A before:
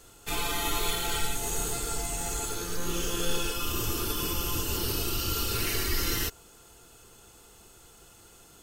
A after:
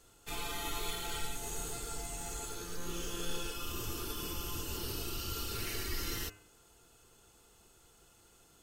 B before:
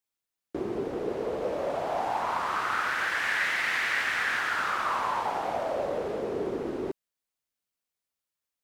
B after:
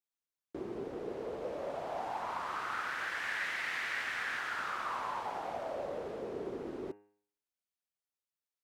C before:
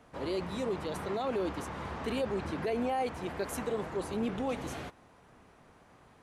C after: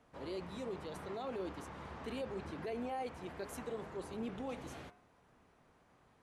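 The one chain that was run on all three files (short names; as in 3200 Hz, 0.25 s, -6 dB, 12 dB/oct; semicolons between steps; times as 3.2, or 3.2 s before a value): high shelf 11000 Hz -3 dB; de-hum 102.7 Hz, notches 28; gain -8.5 dB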